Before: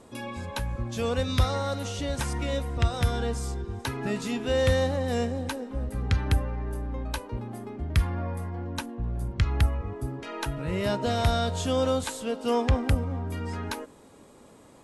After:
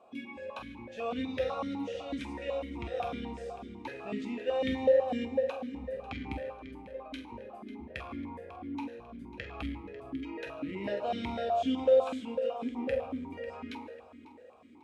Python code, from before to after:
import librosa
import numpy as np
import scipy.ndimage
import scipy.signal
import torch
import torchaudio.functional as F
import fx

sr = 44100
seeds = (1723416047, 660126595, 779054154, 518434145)

y = fx.over_compress(x, sr, threshold_db=-30.0, ratio=-1.0, at=(12.41, 12.84), fade=0.02)
y = fx.doubler(y, sr, ms=46.0, db=-11.0)
y = fx.echo_feedback(y, sr, ms=546, feedback_pct=38, wet_db=-15)
y = fx.rev_fdn(y, sr, rt60_s=1.1, lf_ratio=0.85, hf_ratio=0.75, size_ms=87.0, drr_db=3.0)
y = fx.vowel_held(y, sr, hz=8.0)
y = y * 10.0 ** (4.0 / 20.0)